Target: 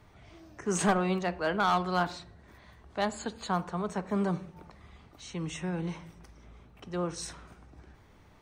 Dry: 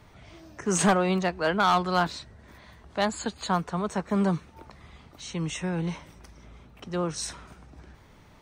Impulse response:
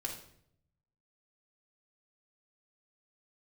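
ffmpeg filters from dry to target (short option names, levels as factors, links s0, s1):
-filter_complex "[0:a]asplit=2[s0][s1];[1:a]atrim=start_sample=2205,lowpass=3000[s2];[s1][s2]afir=irnorm=-1:irlink=0,volume=0.335[s3];[s0][s3]amix=inputs=2:normalize=0,volume=0.501"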